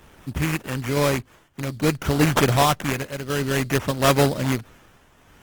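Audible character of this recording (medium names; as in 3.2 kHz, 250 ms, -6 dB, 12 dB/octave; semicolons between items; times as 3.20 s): aliases and images of a low sample rate 4.5 kHz, jitter 20%; tremolo triangle 0.54 Hz, depth 70%; Opus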